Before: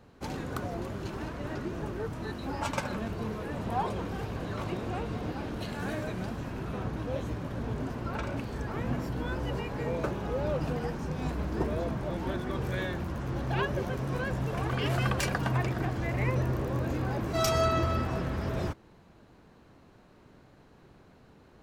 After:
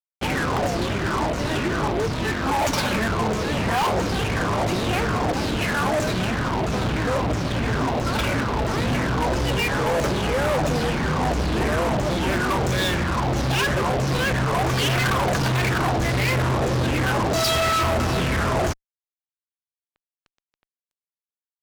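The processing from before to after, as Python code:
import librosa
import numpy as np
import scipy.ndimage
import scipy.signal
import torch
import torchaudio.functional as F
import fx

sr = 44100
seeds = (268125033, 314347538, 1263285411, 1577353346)

y = fx.filter_lfo_lowpass(x, sr, shape='saw_down', hz=1.5, low_hz=620.0, high_hz=7300.0, q=4.9)
y = fx.fuzz(y, sr, gain_db=36.0, gate_db=-43.0)
y = y * 10.0 ** (-6.0 / 20.0)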